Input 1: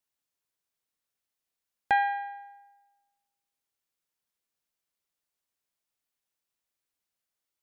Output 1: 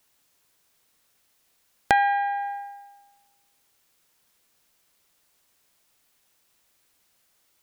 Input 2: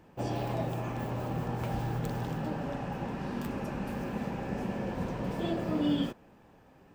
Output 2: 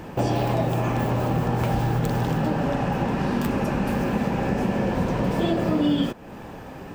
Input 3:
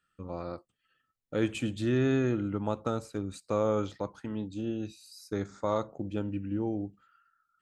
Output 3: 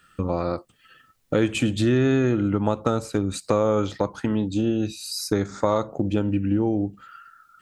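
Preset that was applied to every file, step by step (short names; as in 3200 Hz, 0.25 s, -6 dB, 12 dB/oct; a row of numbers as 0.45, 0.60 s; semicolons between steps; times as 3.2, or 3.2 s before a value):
compressor 2.5:1, threshold -45 dBFS; match loudness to -24 LUFS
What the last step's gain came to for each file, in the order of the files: +19.5, +20.0, +20.5 dB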